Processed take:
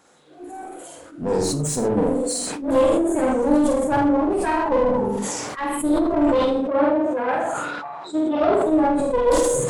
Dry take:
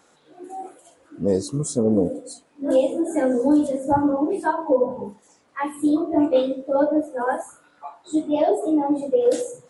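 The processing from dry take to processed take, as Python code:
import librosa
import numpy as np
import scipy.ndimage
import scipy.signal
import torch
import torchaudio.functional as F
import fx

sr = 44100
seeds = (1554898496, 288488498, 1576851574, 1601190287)

y = fx.diode_clip(x, sr, knee_db=-26.0)
y = fx.bandpass_edges(y, sr, low_hz=110.0, high_hz=fx.line((6.53, 3500.0), (8.65, 5100.0)), at=(6.53, 8.65), fade=0.02)
y = fx.doubler(y, sr, ms=48.0, db=-2.0)
y = y + 10.0 ** (-9.5 / 20.0) * np.pad(y, (int(80 * sr / 1000.0), 0))[:len(y)]
y = fx.sustainer(y, sr, db_per_s=21.0)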